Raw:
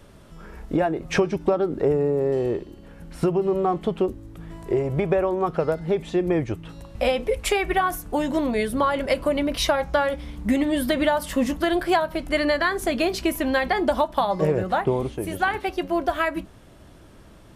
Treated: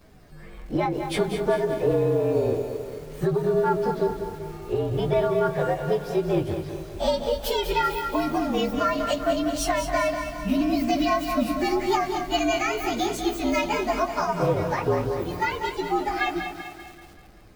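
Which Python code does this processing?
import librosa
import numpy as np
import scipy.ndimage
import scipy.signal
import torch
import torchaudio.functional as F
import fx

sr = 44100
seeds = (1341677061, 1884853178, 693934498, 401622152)

y = fx.partial_stretch(x, sr, pct=115)
y = fx.echo_split(y, sr, split_hz=310.0, low_ms=89, high_ms=193, feedback_pct=52, wet_db=-9.0)
y = fx.echo_crushed(y, sr, ms=219, feedback_pct=55, bits=7, wet_db=-10.5)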